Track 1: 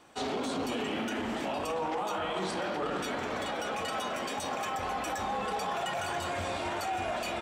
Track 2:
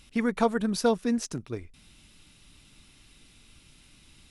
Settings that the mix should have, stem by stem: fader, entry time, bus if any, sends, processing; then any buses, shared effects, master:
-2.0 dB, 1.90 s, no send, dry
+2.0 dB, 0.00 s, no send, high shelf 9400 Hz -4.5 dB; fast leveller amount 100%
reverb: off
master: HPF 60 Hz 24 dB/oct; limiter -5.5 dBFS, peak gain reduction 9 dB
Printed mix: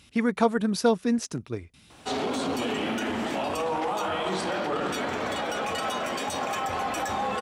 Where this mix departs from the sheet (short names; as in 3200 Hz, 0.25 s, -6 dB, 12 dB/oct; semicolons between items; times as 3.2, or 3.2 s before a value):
stem 1 -2.0 dB -> +4.5 dB; stem 2: missing fast leveller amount 100%